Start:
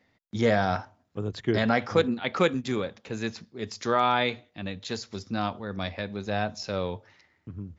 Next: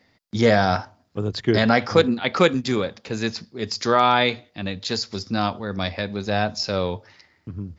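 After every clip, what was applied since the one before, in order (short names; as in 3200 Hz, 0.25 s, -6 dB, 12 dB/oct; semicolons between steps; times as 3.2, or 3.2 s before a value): bell 4800 Hz +8.5 dB 0.38 oct; gain +6 dB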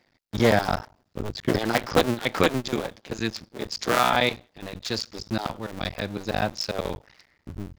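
cycle switcher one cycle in 2, muted; gain -1.5 dB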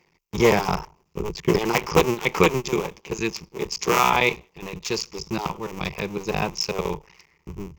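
ripple EQ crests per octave 0.76, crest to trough 12 dB; gain +1.5 dB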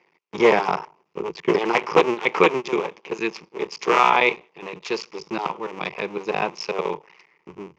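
BPF 320–3100 Hz; gain +3 dB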